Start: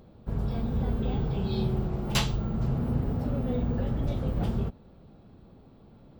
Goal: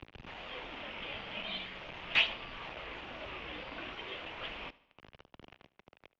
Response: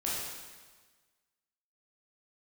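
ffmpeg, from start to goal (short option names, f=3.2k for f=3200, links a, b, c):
-filter_complex "[0:a]asettb=1/sr,asplit=3[a][b][c];[a]atrim=end=1.574[d];[b]atrim=start=1.57:end=2.12,asetpts=PTS-STARTPTS,afade=t=in:d=0.004:c=qsin,afade=t=out:st=0.546:d=0.004:c=qsin,acrossover=split=84|2200[e][f][g];[e]acompressor=threshold=-33dB:ratio=4[h];[f]acompressor=threshold=-33dB:ratio=4[i];[g]acompressor=threshold=-48dB:ratio=4[j];[h][i][j]amix=inputs=3:normalize=0[k];[c]atrim=start=2.116[l];[d][k]acrossfade=d=0.004:c1=hsin:c2=qsin[m];[m][l]acrossfade=d=0.004:c1=qsin:c2=hsin,lowshelf=f=110:g=12,bandreject=f=50:t=h:w=6,bandreject=f=100:t=h:w=6,bandreject=f=150:t=h:w=6,bandreject=f=200:t=h:w=6,bandreject=f=250:t=h:w=6,bandreject=f=300:t=h:w=6,bandreject=f=350:t=h:w=6,bandreject=f=400:t=h:w=6,bandreject=f=450:t=h:w=6,acrossover=split=750[n][o];[n]acompressor=threshold=-40dB:ratio=20[p];[o]aemphasis=mode=production:type=riaa[q];[p][q]amix=inputs=2:normalize=0,aphaser=in_gain=1:out_gain=1:delay=3.2:decay=0.42:speed=0.43:type=triangular,acrusher=bits=5:mix=0:aa=0.000001,asoftclip=type=tanh:threshold=-15dB,aexciter=amount=1.3:drive=7.2:freq=2.4k,asplit=2[r][s];[s]aecho=0:1:74|148|222|296:0.0891|0.0499|0.0279|0.0157[t];[r][t]amix=inputs=2:normalize=0,highpass=f=230:t=q:w=0.5412,highpass=f=230:t=q:w=1.307,lowpass=f=3.4k:t=q:w=0.5176,lowpass=f=3.4k:t=q:w=0.7071,lowpass=f=3.4k:t=q:w=1.932,afreqshift=-190"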